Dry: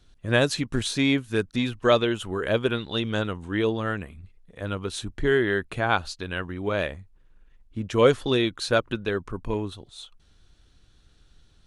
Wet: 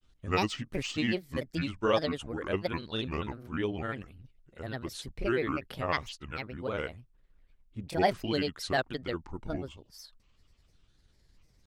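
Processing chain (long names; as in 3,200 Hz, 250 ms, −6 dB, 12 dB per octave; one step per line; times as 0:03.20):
granular cloud, spray 19 ms, pitch spread up and down by 7 semitones
level −6.5 dB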